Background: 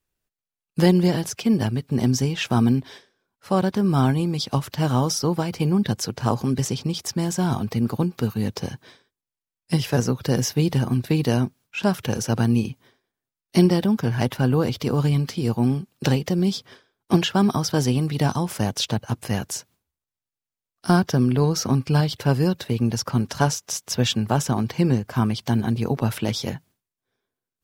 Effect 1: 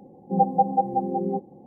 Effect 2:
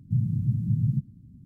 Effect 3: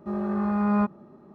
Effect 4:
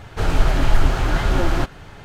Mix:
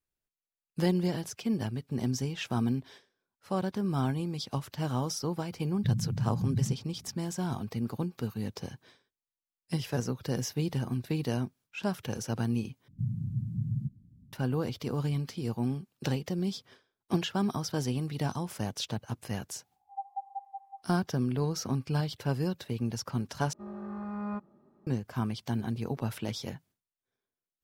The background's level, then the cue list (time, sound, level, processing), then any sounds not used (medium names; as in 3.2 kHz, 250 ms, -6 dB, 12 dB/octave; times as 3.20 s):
background -10.5 dB
5.73 s: add 2 -5 dB + high-pass 59 Hz
12.88 s: replace with 2 -7.5 dB + peaking EQ 300 Hz -2.5 dB
19.58 s: add 1 -17.5 dB + brick-wall FIR high-pass 700 Hz
23.53 s: replace with 3 -13 dB
not used: 4